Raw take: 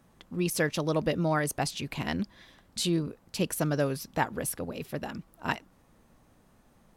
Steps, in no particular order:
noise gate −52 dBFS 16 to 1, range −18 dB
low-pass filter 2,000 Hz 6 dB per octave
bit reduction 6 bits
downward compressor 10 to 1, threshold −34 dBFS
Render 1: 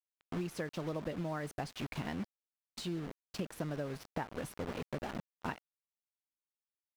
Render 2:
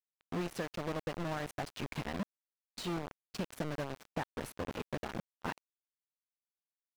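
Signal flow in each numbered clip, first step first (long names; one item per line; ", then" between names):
bit reduction, then noise gate, then downward compressor, then low-pass filter
downward compressor, then bit reduction, then low-pass filter, then noise gate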